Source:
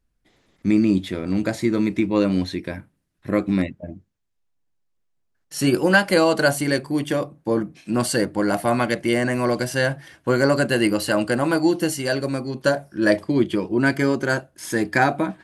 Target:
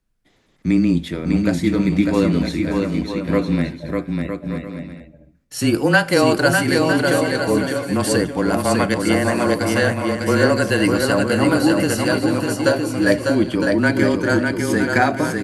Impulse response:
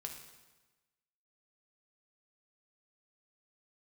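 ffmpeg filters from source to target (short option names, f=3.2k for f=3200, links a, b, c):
-filter_complex "[0:a]afreqshift=-21,aecho=1:1:600|960|1176|1306|1383:0.631|0.398|0.251|0.158|0.1,asplit=2[a][b];[1:a]atrim=start_sample=2205[c];[b][c]afir=irnorm=-1:irlink=0,volume=-10dB[d];[a][d]amix=inputs=2:normalize=0"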